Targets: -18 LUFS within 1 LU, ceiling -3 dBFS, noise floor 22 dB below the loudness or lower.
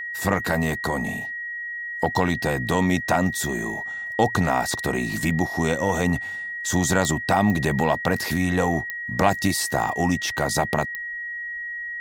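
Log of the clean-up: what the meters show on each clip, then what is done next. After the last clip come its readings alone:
clicks 4; steady tone 1900 Hz; tone level -29 dBFS; loudness -23.5 LUFS; peak -5.0 dBFS; loudness target -18.0 LUFS
-> de-click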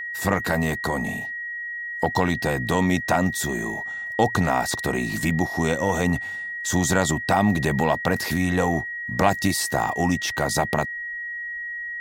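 clicks 0; steady tone 1900 Hz; tone level -29 dBFS
-> notch 1900 Hz, Q 30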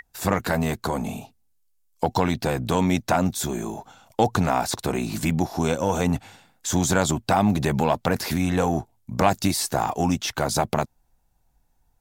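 steady tone none; loudness -24.0 LUFS; peak -5.5 dBFS; loudness target -18.0 LUFS
-> gain +6 dB; limiter -3 dBFS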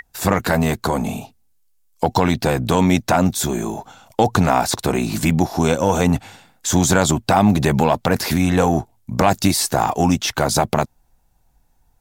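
loudness -18.5 LUFS; peak -3.0 dBFS; noise floor -60 dBFS

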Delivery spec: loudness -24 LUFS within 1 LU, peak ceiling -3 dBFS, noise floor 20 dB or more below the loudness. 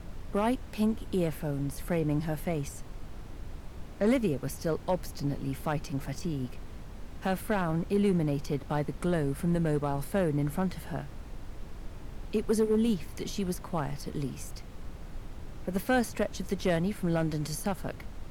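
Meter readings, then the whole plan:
clipped 0.3%; flat tops at -19.0 dBFS; noise floor -44 dBFS; noise floor target -52 dBFS; loudness -31.5 LUFS; peak -19.0 dBFS; loudness target -24.0 LUFS
-> clip repair -19 dBFS; noise print and reduce 8 dB; gain +7.5 dB

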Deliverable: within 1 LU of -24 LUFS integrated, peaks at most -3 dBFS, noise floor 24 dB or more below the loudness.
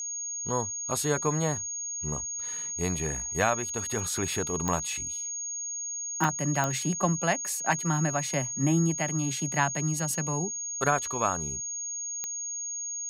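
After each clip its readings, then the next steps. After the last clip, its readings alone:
clicks 4; steady tone 6600 Hz; tone level -32 dBFS; loudness -28.5 LUFS; peak -11.0 dBFS; loudness target -24.0 LUFS
-> de-click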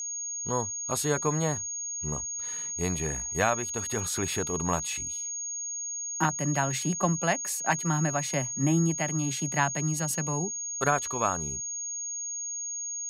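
clicks 0; steady tone 6600 Hz; tone level -32 dBFS
-> notch 6600 Hz, Q 30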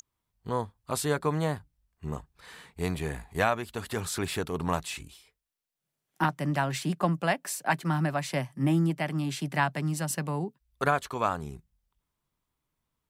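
steady tone none; loudness -30.0 LUFS; peak -11.5 dBFS; loudness target -24.0 LUFS
-> gain +6 dB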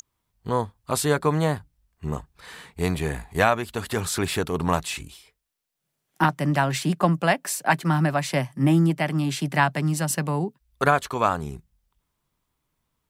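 loudness -24.0 LUFS; peak -5.5 dBFS; noise floor -79 dBFS

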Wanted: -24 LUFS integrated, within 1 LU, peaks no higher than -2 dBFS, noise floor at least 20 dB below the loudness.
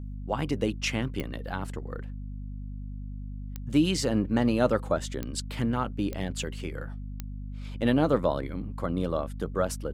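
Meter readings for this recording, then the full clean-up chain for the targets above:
clicks 5; hum 50 Hz; harmonics up to 250 Hz; hum level -34 dBFS; loudness -29.0 LUFS; peak -8.5 dBFS; loudness target -24.0 LUFS
-> de-click; notches 50/100/150/200/250 Hz; gain +5 dB

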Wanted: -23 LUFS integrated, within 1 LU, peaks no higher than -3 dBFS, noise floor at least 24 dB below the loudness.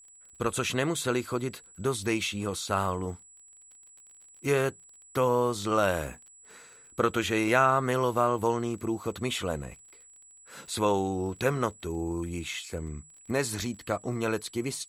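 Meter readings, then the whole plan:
ticks 29/s; steady tone 7800 Hz; tone level -52 dBFS; loudness -29.0 LUFS; peak -9.5 dBFS; loudness target -23.0 LUFS
-> de-click; notch 7800 Hz, Q 30; gain +6 dB

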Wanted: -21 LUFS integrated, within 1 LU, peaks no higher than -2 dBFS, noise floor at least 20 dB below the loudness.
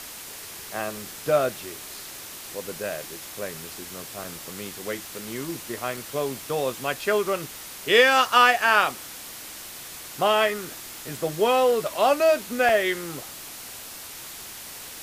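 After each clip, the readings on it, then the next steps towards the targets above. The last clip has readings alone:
dropouts 3; longest dropout 2.3 ms; noise floor -40 dBFS; noise floor target -44 dBFS; loudness -23.5 LUFS; peak -5.0 dBFS; loudness target -21.0 LUFS
-> interpolate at 4.24/5.97/12.69, 2.3 ms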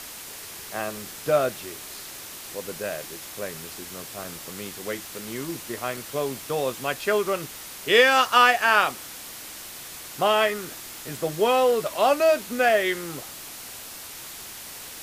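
dropouts 0; noise floor -40 dBFS; noise floor target -44 dBFS
-> noise print and reduce 6 dB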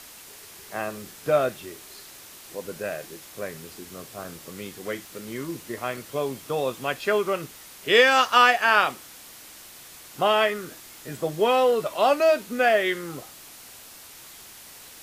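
noise floor -46 dBFS; loudness -23.0 LUFS; peak -5.0 dBFS; loudness target -21.0 LUFS
-> gain +2 dB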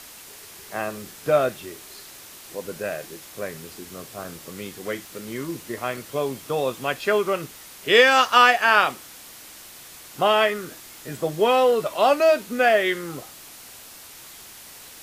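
loudness -21.0 LUFS; peak -3.0 dBFS; noise floor -44 dBFS

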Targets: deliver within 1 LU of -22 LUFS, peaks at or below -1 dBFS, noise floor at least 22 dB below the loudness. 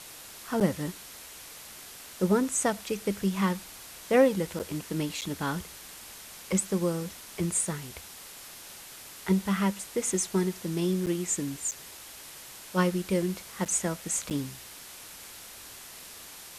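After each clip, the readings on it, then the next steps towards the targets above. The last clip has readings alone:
dropouts 7; longest dropout 7.8 ms; noise floor -46 dBFS; noise floor target -51 dBFS; loudness -29.0 LUFS; peak -10.5 dBFS; loudness target -22.0 LUFS
-> interpolate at 0.6/4.59/5.21/11.06/11.71/13.65/14.3, 7.8 ms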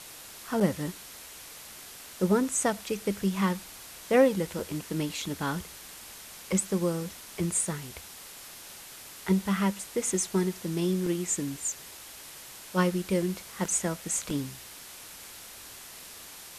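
dropouts 0; noise floor -46 dBFS; noise floor target -51 dBFS
-> denoiser 6 dB, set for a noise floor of -46 dBFS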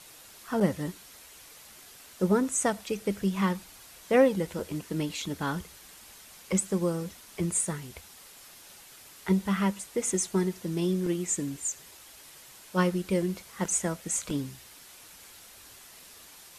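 noise floor -51 dBFS; noise floor target -52 dBFS
-> denoiser 6 dB, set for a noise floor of -51 dBFS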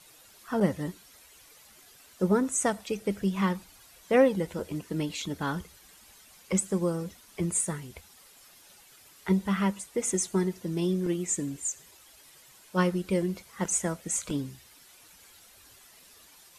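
noise floor -56 dBFS; loudness -29.5 LUFS; peak -10.5 dBFS; loudness target -22.0 LUFS
-> gain +7.5 dB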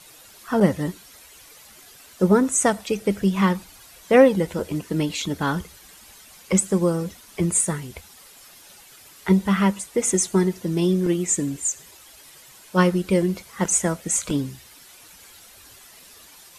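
loudness -22.0 LUFS; peak -3.0 dBFS; noise floor -48 dBFS

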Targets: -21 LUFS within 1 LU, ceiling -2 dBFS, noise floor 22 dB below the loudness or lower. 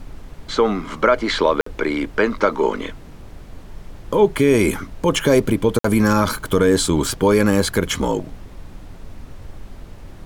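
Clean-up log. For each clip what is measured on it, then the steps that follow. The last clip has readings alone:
dropouts 2; longest dropout 54 ms; noise floor -40 dBFS; noise floor target -41 dBFS; loudness -18.5 LUFS; peak -4.0 dBFS; loudness target -21.0 LUFS
-> interpolate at 1.61/5.79, 54 ms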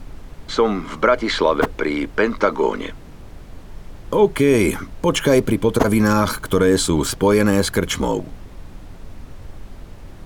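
dropouts 0; noise floor -39 dBFS; noise floor target -41 dBFS
-> noise print and reduce 6 dB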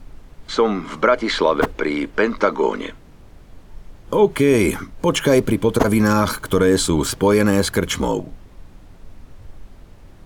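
noise floor -45 dBFS; loudness -18.5 LUFS; peak -3.0 dBFS; loudness target -21.0 LUFS
-> gain -2.5 dB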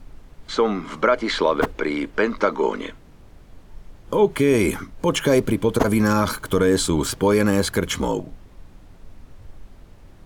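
loudness -21.0 LUFS; peak -5.5 dBFS; noise floor -48 dBFS

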